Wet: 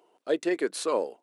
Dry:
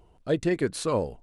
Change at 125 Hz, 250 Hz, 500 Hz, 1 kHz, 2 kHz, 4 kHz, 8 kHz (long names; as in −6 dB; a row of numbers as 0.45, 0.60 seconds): −23.0, −3.0, −0.5, 0.0, 0.0, 0.0, 0.0 decibels